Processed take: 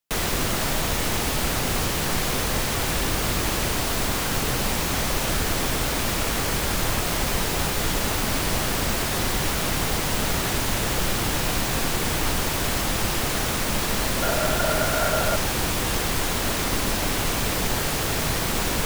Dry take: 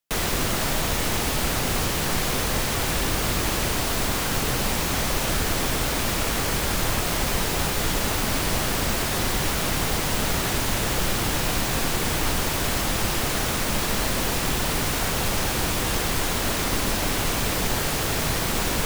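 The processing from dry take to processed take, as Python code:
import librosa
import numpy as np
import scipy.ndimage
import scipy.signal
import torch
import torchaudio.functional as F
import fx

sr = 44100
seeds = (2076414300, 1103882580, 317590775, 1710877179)

y = fx.small_body(x, sr, hz=(630.0, 1400.0), ring_ms=45, db=15, at=(14.22, 15.36))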